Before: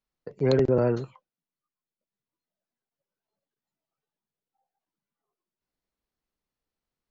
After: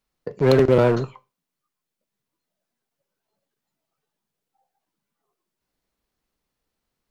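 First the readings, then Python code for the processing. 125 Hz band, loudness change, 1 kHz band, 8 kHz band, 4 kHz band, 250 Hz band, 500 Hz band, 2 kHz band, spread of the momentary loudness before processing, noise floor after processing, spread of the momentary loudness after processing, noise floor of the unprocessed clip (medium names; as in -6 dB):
+5.5 dB, +6.0 dB, +9.5 dB, no reading, +7.0 dB, +5.5 dB, +6.5 dB, +10.0 dB, 12 LU, -84 dBFS, 11 LU, under -85 dBFS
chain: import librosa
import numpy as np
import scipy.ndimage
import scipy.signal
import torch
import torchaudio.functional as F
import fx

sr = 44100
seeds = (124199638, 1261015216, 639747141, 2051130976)

p1 = fx.dynamic_eq(x, sr, hz=1100.0, q=1.1, threshold_db=-39.0, ratio=4.0, max_db=4)
p2 = 10.0 ** (-26.5 / 20.0) * (np.abs((p1 / 10.0 ** (-26.5 / 20.0) + 3.0) % 4.0 - 2.0) - 1.0)
p3 = p1 + F.gain(torch.from_numpy(p2), -6.0).numpy()
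p4 = fx.rev_schroeder(p3, sr, rt60_s=0.3, comb_ms=27, drr_db=19.5)
y = F.gain(torch.from_numpy(p4), 5.0).numpy()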